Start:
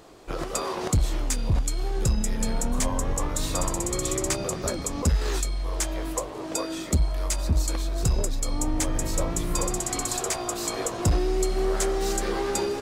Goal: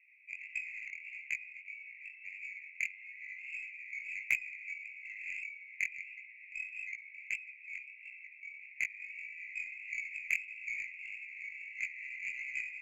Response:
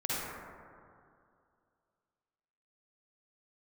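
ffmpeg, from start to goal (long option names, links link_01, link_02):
-af "asuperpass=centerf=2300:order=12:qfactor=3.7,aeval=exprs='0.0596*(cos(1*acos(clip(val(0)/0.0596,-1,1)))-cos(1*PI/2))+0.00075*(cos(4*acos(clip(val(0)/0.0596,-1,1)))-cos(4*PI/2))+0.00422*(cos(7*acos(clip(val(0)/0.0596,-1,1)))-cos(7*PI/2))':channel_layout=same,flanger=delay=16:depth=6.7:speed=1.6,volume=14dB"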